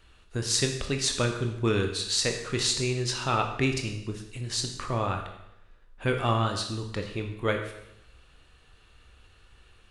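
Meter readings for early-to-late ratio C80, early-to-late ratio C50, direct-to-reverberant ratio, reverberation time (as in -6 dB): 9.5 dB, 7.0 dB, 3.5 dB, 0.80 s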